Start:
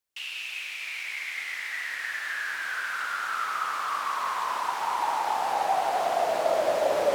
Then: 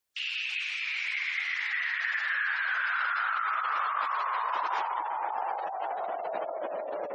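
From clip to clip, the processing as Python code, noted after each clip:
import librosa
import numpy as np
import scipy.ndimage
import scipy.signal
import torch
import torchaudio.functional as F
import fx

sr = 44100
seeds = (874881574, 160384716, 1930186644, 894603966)

y = fx.over_compress(x, sr, threshold_db=-31.0, ratio=-1.0)
y = fx.spec_gate(y, sr, threshold_db=-25, keep='strong')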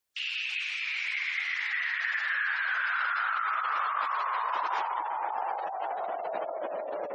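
y = x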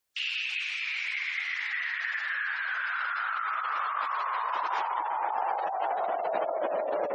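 y = fx.rider(x, sr, range_db=10, speed_s=0.5)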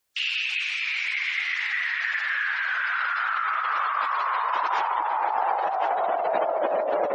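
y = fx.echo_feedback(x, sr, ms=1075, feedback_pct=31, wet_db=-12.5)
y = y * 10.0 ** (5.0 / 20.0)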